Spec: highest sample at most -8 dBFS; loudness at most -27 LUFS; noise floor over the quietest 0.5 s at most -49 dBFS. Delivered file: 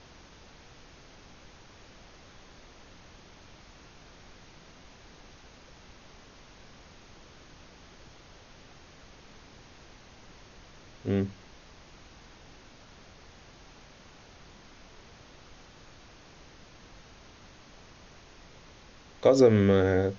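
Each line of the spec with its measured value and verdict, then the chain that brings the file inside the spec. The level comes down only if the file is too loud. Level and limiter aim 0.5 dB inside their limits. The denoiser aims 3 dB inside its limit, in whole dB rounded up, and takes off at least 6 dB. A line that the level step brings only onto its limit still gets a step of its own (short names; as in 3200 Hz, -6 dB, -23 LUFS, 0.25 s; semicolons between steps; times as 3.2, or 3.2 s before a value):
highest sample -9.0 dBFS: OK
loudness -24.0 LUFS: fail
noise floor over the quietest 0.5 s -53 dBFS: OK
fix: gain -3.5 dB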